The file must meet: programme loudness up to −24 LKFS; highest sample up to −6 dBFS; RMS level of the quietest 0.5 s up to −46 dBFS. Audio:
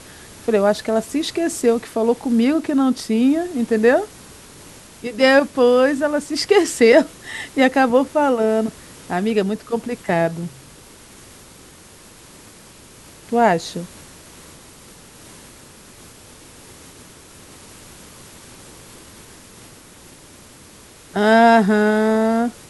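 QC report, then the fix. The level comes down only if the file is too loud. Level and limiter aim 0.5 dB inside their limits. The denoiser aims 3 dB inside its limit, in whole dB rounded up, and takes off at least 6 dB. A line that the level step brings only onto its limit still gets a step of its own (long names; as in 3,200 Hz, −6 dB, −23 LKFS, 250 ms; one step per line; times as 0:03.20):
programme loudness −17.5 LKFS: out of spec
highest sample −1.5 dBFS: out of spec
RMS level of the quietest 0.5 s −44 dBFS: out of spec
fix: level −7 dB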